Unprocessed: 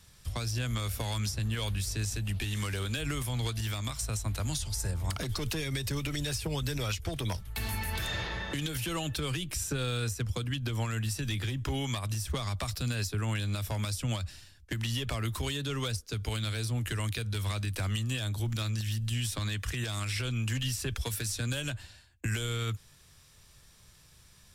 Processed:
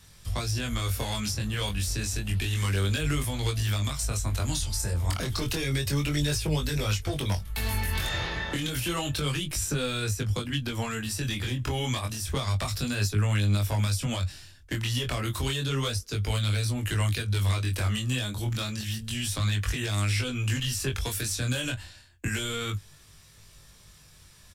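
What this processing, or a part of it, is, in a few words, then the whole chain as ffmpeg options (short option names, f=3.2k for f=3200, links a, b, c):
double-tracked vocal: -filter_complex "[0:a]asplit=2[a][b];[b]adelay=20,volume=-12dB[c];[a][c]amix=inputs=2:normalize=0,flanger=delay=19.5:depth=4.5:speed=0.3,volume=7dB"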